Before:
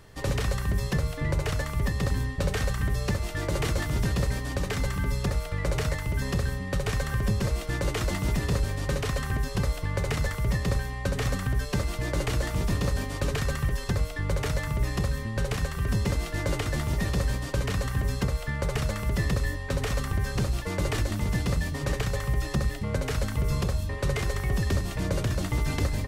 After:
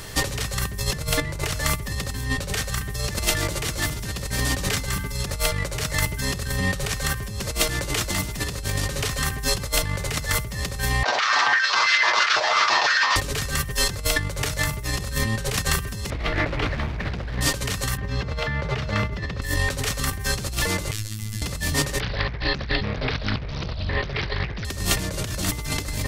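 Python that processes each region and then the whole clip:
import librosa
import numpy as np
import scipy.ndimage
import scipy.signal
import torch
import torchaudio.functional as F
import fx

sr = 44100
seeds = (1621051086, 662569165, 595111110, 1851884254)

y = fx.chain(x, sr, fx.lower_of_two(delay_ms=8.3),
    fx.steep_lowpass(hz=5500.0, slope=36),
    fx.filter_held_highpass(hz=6.0, low_hz=770.0, high_hz=1700.0), at=(11.03, 13.16))
y = fx.chain(y, sr, fx.air_absorb(metres=350.0),
    fx.hum_notches(base_hz=50, count=10),
    fx.doppler_dist(depth_ms=0.7), at=(16.1, 17.41))
y = fx.chain(y, sr, fx.highpass(hz=52.0, slope=24),
    fx.air_absorb(metres=240.0), at=(17.97, 19.42))
y = fx.chain(y, sr, fx.tone_stack(knobs='6-0-2'),
    fx.robotise(hz=107.0), at=(20.91, 21.42))
y = fx.chain(y, sr, fx.steep_lowpass(hz=4700.0, slope=96),
    fx.doppler_dist(depth_ms=0.82), at=(22.0, 24.65))
y = fx.over_compress(y, sr, threshold_db=-34.0, ratio=-1.0)
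y = fx.high_shelf(y, sr, hz=2200.0, db=11.5)
y = F.gain(torch.from_numpy(y), 6.5).numpy()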